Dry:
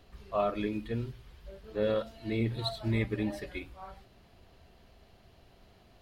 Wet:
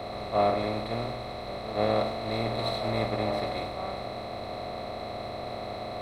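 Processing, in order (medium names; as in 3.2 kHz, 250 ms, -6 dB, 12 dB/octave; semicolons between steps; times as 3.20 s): spectral levelling over time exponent 0.2; peaking EQ 760 Hz +12 dB 0.51 oct; three bands expanded up and down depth 100%; trim -7 dB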